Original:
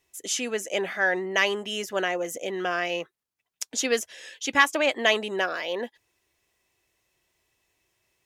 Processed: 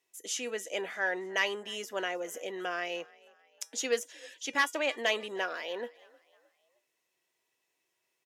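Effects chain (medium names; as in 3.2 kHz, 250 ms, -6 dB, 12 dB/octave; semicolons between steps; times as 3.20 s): overload inside the chain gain 10 dB; high-pass 240 Hz 12 dB/octave; feedback comb 480 Hz, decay 0.21 s, harmonics all, mix 60%; on a send: frequency-shifting echo 310 ms, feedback 47%, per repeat +39 Hz, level -24 dB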